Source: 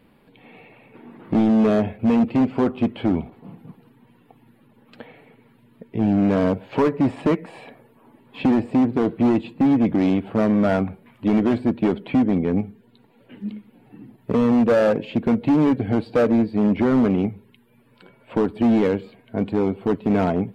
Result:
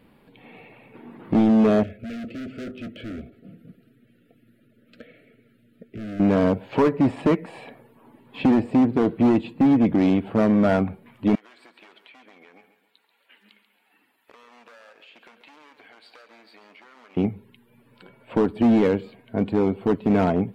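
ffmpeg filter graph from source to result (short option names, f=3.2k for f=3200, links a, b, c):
-filter_complex "[0:a]asettb=1/sr,asplit=3[a][b][c];[a]atrim=end=1.834[d];[b]atrim=start=1.83:end=6.2,asetpts=PTS-STARTPTS,afade=t=in:d=0.004:c=qsin,afade=t=out:st=4.366:d=0.004:c=qsin,flanger=delay=2.7:depth=1.2:regen=-70:speed=1.4:shape=triangular,volume=31.5dB,asoftclip=hard,volume=-31.5dB,asuperstop=centerf=930:order=12:qfactor=1.6[e];[c]atrim=start=6.196[f];[d][e]acrossfade=d=0.004:c1=hsin:c2=qsin[g];[g][f]acrossfade=d=0.004:c1=qsin:c2=hsin,asettb=1/sr,asplit=3[h][i][j];[h]atrim=end=11.354[k];[i]atrim=start=11.35:end=17.17,asetpts=PTS-STARTPTS,afade=t=in:d=0.004:c=qsin,afade=t=out:st=5.816:d=0.004:c=qsin,highpass=1.4k,acompressor=threshold=-46dB:ratio=16:attack=3.2:release=140:knee=1:detection=peak,aecho=1:1:137|274|411|548:0.266|0.117|0.0515|0.0227,atrim=end_sample=256662[l];[j]atrim=start=17.166[m];[k][l]acrossfade=d=0.004:c1=hsin:c2=qsin[n];[n][m]acrossfade=d=0.004:c1=qsin:c2=hsin"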